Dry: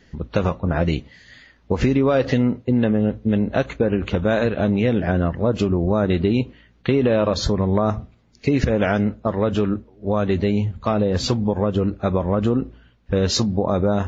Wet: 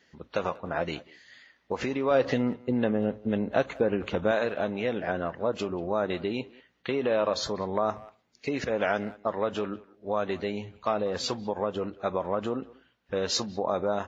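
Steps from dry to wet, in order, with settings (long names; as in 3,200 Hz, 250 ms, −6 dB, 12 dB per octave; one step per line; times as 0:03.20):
high-pass filter 610 Hz 6 dB per octave, from 0:02.11 250 Hz, from 0:04.31 590 Hz
dynamic equaliser 780 Hz, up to +4 dB, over −33 dBFS, Q 0.76
far-end echo of a speakerphone 190 ms, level −20 dB
level −6 dB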